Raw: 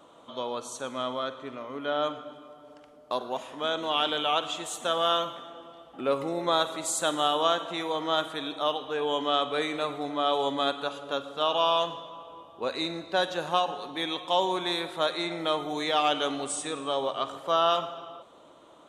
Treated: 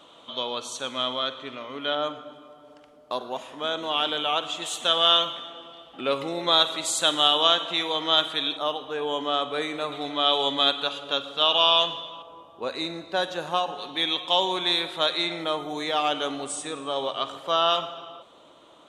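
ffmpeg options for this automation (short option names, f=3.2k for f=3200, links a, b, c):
-af "asetnsamples=n=441:p=0,asendcmd='1.95 equalizer g 2.5;4.62 equalizer g 11.5;8.57 equalizer g 1;9.92 equalizer g 11.5;12.22 equalizer g 1;13.78 equalizer g 8.5;15.44 equalizer g 0.5;16.96 equalizer g 6.5',equalizer=f=3.3k:t=o:w=1.4:g=12"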